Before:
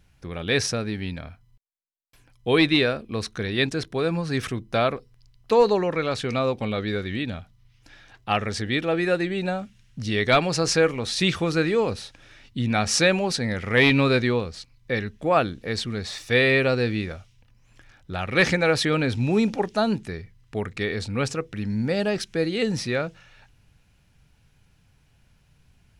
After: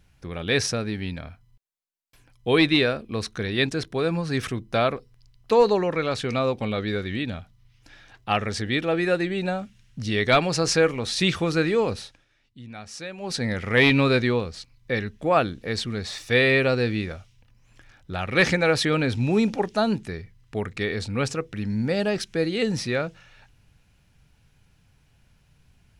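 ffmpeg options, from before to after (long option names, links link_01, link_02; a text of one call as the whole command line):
ffmpeg -i in.wav -filter_complex "[0:a]asplit=3[link_01][link_02][link_03];[link_01]atrim=end=12.25,asetpts=PTS-STARTPTS,afade=type=out:start_time=12:duration=0.25:silence=0.141254[link_04];[link_02]atrim=start=12.25:end=13.17,asetpts=PTS-STARTPTS,volume=-17dB[link_05];[link_03]atrim=start=13.17,asetpts=PTS-STARTPTS,afade=type=in:duration=0.25:silence=0.141254[link_06];[link_04][link_05][link_06]concat=n=3:v=0:a=1" out.wav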